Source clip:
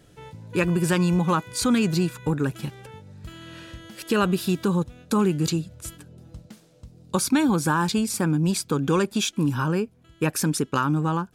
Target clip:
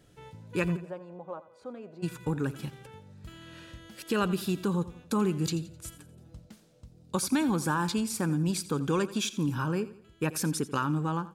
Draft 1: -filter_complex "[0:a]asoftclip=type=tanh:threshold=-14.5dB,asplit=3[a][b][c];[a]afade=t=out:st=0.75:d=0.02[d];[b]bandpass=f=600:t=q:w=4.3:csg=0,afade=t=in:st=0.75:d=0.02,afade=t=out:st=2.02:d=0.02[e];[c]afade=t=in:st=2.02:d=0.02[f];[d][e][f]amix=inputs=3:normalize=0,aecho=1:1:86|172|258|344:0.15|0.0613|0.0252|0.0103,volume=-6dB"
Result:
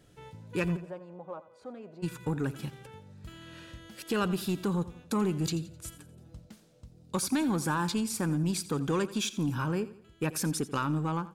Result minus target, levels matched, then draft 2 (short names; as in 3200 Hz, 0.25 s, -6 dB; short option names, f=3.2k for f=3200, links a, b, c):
soft clip: distortion +21 dB
-filter_complex "[0:a]asoftclip=type=tanh:threshold=-3dB,asplit=3[a][b][c];[a]afade=t=out:st=0.75:d=0.02[d];[b]bandpass=f=600:t=q:w=4.3:csg=0,afade=t=in:st=0.75:d=0.02,afade=t=out:st=2.02:d=0.02[e];[c]afade=t=in:st=2.02:d=0.02[f];[d][e][f]amix=inputs=3:normalize=0,aecho=1:1:86|172|258|344:0.15|0.0613|0.0252|0.0103,volume=-6dB"